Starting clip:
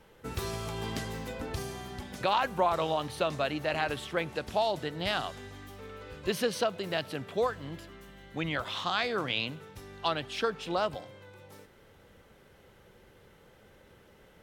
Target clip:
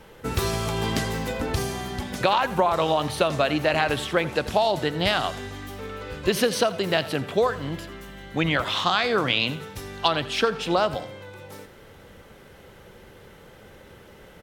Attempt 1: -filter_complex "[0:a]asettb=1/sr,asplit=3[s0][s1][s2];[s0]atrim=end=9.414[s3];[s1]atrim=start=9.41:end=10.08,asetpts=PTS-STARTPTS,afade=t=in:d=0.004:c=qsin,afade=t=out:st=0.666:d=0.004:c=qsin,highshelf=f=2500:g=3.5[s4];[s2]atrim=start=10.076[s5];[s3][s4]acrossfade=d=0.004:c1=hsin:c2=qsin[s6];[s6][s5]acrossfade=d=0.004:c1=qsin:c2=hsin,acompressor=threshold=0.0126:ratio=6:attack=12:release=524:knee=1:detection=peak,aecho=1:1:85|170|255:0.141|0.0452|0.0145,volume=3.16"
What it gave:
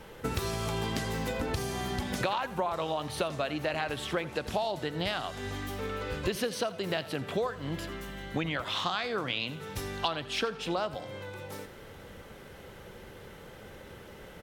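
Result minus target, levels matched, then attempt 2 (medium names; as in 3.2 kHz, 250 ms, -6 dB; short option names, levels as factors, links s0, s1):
compression: peak gain reduction +10 dB
-filter_complex "[0:a]asettb=1/sr,asplit=3[s0][s1][s2];[s0]atrim=end=9.414[s3];[s1]atrim=start=9.41:end=10.08,asetpts=PTS-STARTPTS,afade=t=in:d=0.004:c=qsin,afade=t=out:st=0.666:d=0.004:c=qsin,highshelf=f=2500:g=3.5[s4];[s2]atrim=start=10.076[s5];[s3][s4]acrossfade=d=0.004:c1=hsin:c2=qsin[s6];[s6][s5]acrossfade=d=0.004:c1=qsin:c2=hsin,acompressor=threshold=0.0501:ratio=6:attack=12:release=524:knee=1:detection=peak,aecho=1:1:85|170|255:0.141|0.0452|0.0145,volume=3.16"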